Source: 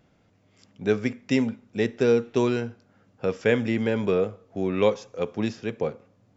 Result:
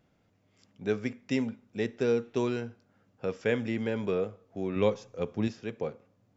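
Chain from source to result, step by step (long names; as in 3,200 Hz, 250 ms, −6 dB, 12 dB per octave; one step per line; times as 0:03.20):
0:04.76–0:05.48: low-shelf EQ 190 Hz +9.5 dB
level −6.5 dB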